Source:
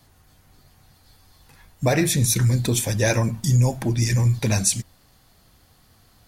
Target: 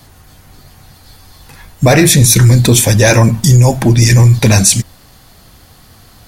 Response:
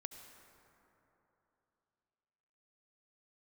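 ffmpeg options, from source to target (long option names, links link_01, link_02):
-af "apsyclip=16.5dB,volume=-2dB"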